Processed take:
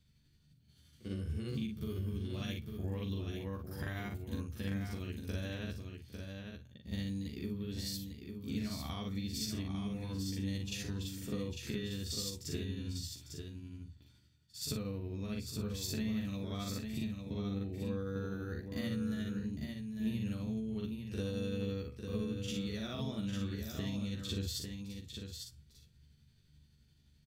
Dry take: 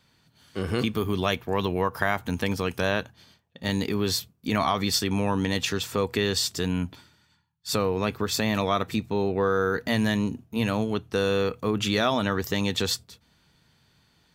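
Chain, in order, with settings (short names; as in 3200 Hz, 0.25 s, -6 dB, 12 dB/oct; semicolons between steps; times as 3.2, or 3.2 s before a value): passive tone stack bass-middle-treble 10-0-1; compressor, threshold -45 dBFS, peak gain reduction 9.5 dB; granular stretch 1.9×, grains 0.173 s; doubler 14 ms -3 dB; echo 0.85 s -6 dB; gain +10 dB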